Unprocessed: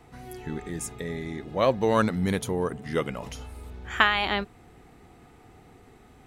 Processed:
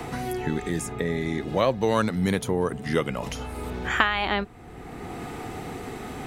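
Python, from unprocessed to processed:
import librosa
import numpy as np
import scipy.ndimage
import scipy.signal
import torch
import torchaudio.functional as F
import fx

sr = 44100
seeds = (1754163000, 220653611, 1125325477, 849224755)

y = fx.band_squash(x, sr, depth_pct=70)
y = y * 10.0 ** (2.5 / 20.0)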